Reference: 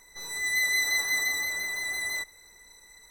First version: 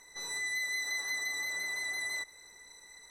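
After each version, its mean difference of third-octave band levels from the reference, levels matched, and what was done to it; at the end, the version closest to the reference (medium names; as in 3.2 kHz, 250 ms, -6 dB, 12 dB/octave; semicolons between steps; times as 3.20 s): 3.5 dB: low-pass 10 kHz 12 dB/octave; bass shelf 110 Hz -10 dB; compression 4:1, threshold -34 dBFS, peak gain reduction 9.5 dB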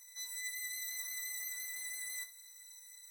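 8.5 dB: differentiator; reverse; compression, threshold -41 dBFS, peak gain reduction 12 dB; reverse; feedback comb 87 Hz, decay 0.25 s, harmonics all, mix 80%; trim +7.5 dB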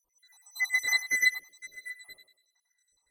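11.0 dB: random holes in the spectrogram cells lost 72%; on a send: thinning echo 97 ms, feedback 39%, high-pass 220 Hz, level -5.5 dB; on the sum: upward expansion 2.5:1, over -39 dBFS; trim +5 dB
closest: first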